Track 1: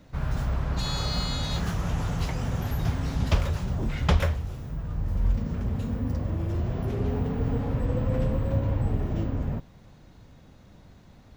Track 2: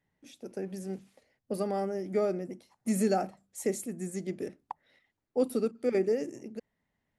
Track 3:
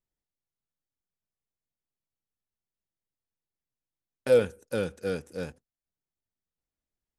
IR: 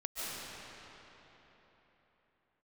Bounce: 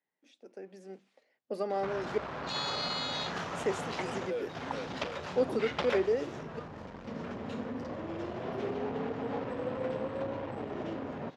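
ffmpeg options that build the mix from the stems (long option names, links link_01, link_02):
-filter_complex "[0:a]asoftclip=type=tanh:threshold=-20dB,adelay=1700,volume=2dB[link_01];[1:a]volume=-7dB,asplit=3[link_02][link_03][link_04];[link_02]atrim=end=2.18,asetpts=PTS-STARTPTS,afade=type=out:start_time=2.176:duration=0.004:curve=hsin[link_05];[link_03]atrim=start=2.18:end=3.26,asetpts=PTS-STARTPTS,volume=0[link_06];[link_04]atrim=start=3.26,asetpts=PTS-STARTPTS,afade=type=in:duration=0.004:curve=hsin[link_07];[link_05][link_06][link_07]concat=n=3:v=0:a=1[link_08];[2:a]volume=-17dB,asplit=2[link_09][link_10];[link_10]apad=whole_len=576290[link_11];[link_01][link_11]sidechaincompress=threshold=-51dB:ratio=3:attack=6.3:release=600[link_12];[link_12][link_09]amix=inputs=2:normalize=0,alimiter=level_in=4.5dB:limit=-24dB:level=0:latency=1:release=397,volume=-4.5dB,volume=0dB[link_13];[link_08][link_13]amix=inputs=2:normalize=0,dynaudnorm=framelen=180:gausssize=13:maxgain=8dB,highpass=350,lowpass=4500"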